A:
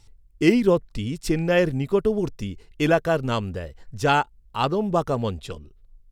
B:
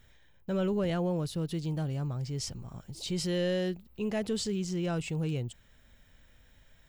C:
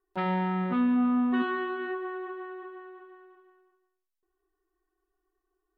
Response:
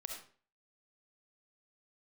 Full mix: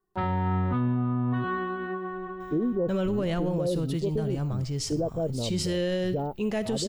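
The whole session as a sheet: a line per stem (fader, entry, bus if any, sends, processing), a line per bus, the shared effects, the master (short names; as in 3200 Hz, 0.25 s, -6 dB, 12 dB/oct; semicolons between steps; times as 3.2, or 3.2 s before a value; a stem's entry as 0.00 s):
-4.5 dB, 2.10 s, no send, Chebyshev low-pass 580 Hz, order 3
+2.0 dB, 2.40 s, send -6.5 dB, gate with hold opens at -52 dBFS
-0.5 dB, 0.00 s, no send, octaver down 1 oct, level -1 dB; fifteen-band EQ 100 Hz +5 dB, 1000 Hz +4 dB, 2500 Hz -5 dB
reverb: on, RT60 0.45 s, pre-delay 25 ms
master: limiter -19.5 dBFS, peak gain reduction 8 dB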